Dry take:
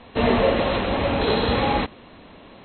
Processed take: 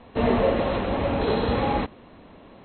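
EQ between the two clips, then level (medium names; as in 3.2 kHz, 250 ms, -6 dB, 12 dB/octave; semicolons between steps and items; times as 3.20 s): treble shelf 2.1 kHz -9.5 dB; -1.5 dB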